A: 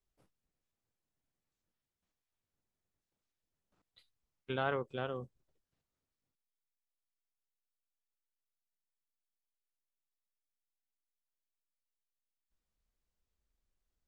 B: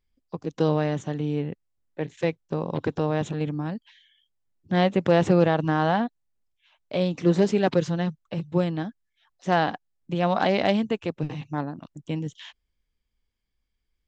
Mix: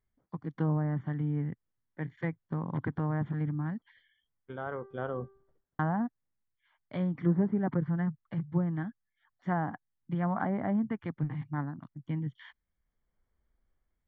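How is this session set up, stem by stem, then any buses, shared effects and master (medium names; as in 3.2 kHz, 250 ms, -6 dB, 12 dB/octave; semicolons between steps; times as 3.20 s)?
+1.5 dB, 0.00 s, no send, de-hum 391.5 Hz, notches 31; level rider gain up to 7 dB; auto duck -12 dB, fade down 0.25 s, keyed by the second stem
-10.5 dB, 0.00 s, muted 4.70–5.79 s, no send, graphic EQ 125/250/500/1000/2000/4000 Hz +10/+5/-8/+4/+10/+8 dB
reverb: none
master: low-pass that closes with the level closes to 940 Hz, closed at -24.5 dBFS; Savitzky-Golay filter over 41 samples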